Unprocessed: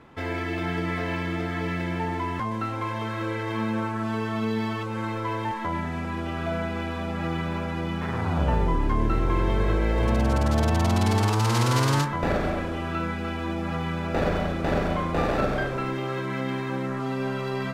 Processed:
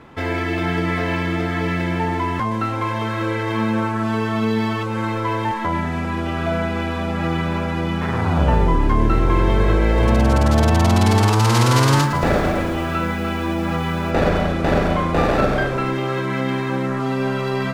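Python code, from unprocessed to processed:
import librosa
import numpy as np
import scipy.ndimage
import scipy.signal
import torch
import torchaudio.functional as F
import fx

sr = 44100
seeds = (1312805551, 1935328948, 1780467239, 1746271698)

y = fx.echo_crushed(x, sr, ms=112, feedback_pct=80, bits=7, wet_db=-14, at=(11.81, 14.11))
y = y * 10.0 ** (7.0 / 20.0)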